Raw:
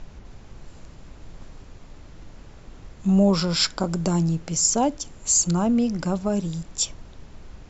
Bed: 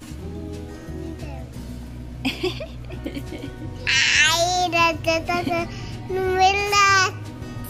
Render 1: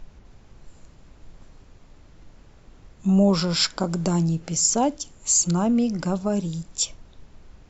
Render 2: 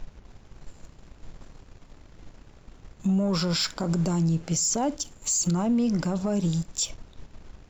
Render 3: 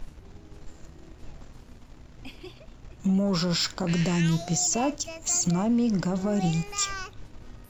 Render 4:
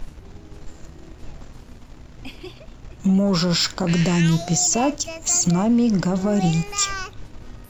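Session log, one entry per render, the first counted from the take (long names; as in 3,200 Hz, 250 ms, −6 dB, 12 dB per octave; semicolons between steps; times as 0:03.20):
noise reduction from a noise print 6 dB
leveller curve on the samples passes 1; brickwall limiter −18 dBFS, peak gain reduction 11 dB
mix in bed −19.5 dB
level +6 dB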